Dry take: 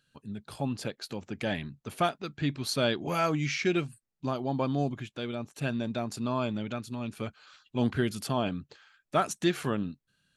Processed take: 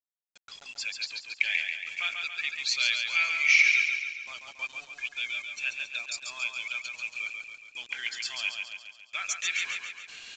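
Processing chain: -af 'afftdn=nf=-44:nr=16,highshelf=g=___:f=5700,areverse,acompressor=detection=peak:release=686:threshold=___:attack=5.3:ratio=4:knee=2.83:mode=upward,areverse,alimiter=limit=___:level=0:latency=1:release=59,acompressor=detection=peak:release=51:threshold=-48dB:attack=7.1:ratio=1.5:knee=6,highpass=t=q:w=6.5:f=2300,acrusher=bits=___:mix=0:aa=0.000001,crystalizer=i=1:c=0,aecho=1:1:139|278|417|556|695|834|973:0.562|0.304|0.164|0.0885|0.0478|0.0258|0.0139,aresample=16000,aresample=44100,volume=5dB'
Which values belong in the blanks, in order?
6.5, -39dB, -15.5dB, 8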